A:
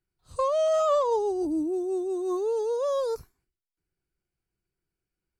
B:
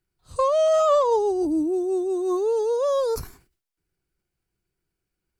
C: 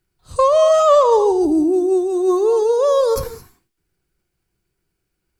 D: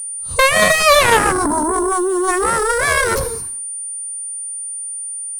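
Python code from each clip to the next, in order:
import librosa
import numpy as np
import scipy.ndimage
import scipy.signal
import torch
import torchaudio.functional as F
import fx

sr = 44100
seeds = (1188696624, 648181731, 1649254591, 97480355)

y1 = fx.sustainer(x, sr, db_per_s=130.0)
y1 = y1 * librosa.db_to_amplitude(4.5)
y2 = fx.rev_gated(y1, sr, seeds[0], gate_ms=240, shape='rising', drr_db=12.0)
y2 = y2 * librosa.db_to_amplitude(7.0)
y3 = y2 + 10.0 ** (-30.0 / 20.0) * np.sin(2.0 * np.pi * 9300.0 * np.arange(len(y2)) / sr)
y3 = fx.cheby_harmonics(y3, sr, harmonics=(4, 7), levels_db=(-15, -6), full_scale_db=-2.5)
y3 = y3 * librosa.db_to_amplitude(-2.0)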